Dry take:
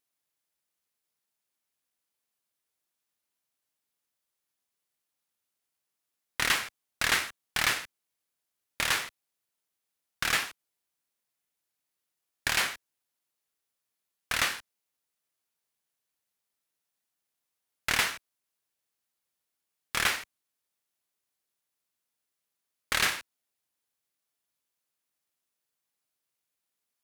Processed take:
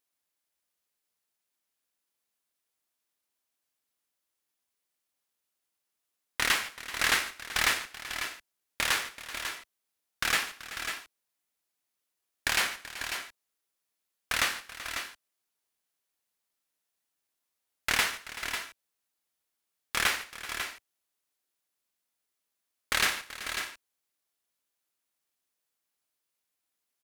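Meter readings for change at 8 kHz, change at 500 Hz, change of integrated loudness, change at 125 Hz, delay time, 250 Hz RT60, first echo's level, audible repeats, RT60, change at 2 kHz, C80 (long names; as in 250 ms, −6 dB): +1.0 dB, +0.5 dB, −1.5 dB, −2.5 dB, 143 ms, no reverb audible, −19.5 dB, 3, no reverb audible, +1.0 dB, no reverb audible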